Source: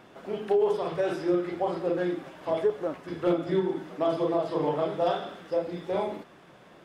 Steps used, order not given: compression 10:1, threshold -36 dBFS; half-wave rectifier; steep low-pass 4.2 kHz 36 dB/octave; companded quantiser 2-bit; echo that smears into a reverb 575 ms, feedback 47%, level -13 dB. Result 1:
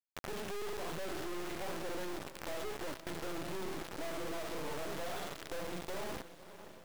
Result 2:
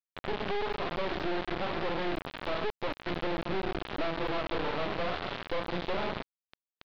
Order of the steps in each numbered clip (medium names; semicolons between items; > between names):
steep low-pass > companded quantiser > compression > echo that smears into a reverb > half-wave rectifier; half-wave rectifier > compression > echo that smears into a reverb > companded quantiser > steep low-pass